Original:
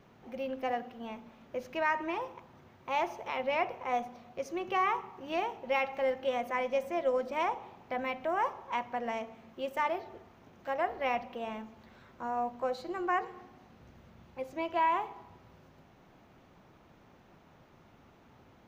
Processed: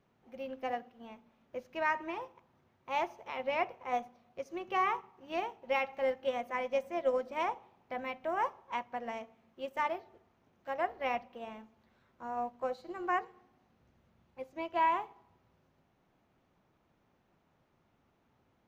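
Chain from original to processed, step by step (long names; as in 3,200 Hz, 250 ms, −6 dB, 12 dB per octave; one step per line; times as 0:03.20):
expander for the loud parts 1.5 to 1, over −51 dBFS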